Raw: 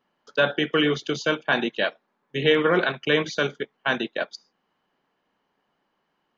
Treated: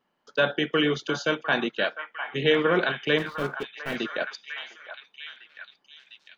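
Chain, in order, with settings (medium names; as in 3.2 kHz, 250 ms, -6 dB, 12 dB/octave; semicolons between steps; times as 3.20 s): 3.18–3.96 s: median filter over 41 samples; repeats whose band climbs or falls 703 ms, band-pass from 1.1 kHz, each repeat 0.7 oct, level -5.5 dB; trim -2 dB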